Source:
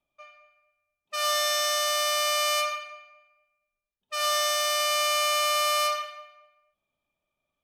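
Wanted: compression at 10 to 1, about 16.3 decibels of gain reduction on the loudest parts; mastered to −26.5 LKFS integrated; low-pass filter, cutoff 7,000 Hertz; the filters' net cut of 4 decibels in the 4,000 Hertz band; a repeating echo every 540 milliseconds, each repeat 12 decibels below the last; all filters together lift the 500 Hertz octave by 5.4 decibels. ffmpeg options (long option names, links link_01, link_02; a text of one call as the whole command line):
ffmpeg -i in.wav -af "lowpass=7000,equalizer=frequency=500:width_type=o:gain=7,equalizer=frequency=4000:width_type=o:gain=-5.5,acompressor=threshold=-39dB:ratio=10,aecho=1:1:540|1080|1620:0.251|0.0628|0.0157,volume=15.5dB" out.wav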